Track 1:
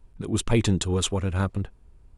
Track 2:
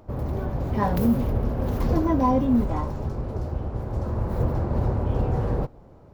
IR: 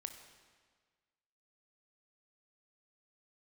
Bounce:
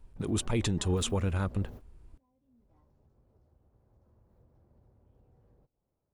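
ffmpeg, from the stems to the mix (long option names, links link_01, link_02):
-filter_complex "[0:a]volume=-1.5dB,asplit=2[link_01][link_02];[1:a]adynamicequalizer=threshold=0.00891:dfrequency=1100:dqfactor=1.1:tfrequency=1100:tqfactor=1.1:attack=5:release=100:ratio=0.375:range=2:mode=cutabove:tftype=bell,acompressor=threshold=-32dB:ratio=2,volume=-2.5dB,afade=type=in:start_time=2.4:duration=0.37:silence=0.237137[link_03];[link_02]apad=whole_len=270733[link_04];[link_03][link_04]sidechaingate=range=-31dB:threshold=-45dB:ratio=16:detection=peak[link_05];[link_01][link_05]amix=inputs=2:normalize=0,alimiter=limit=-21dB:level=0:latency=1:release=34"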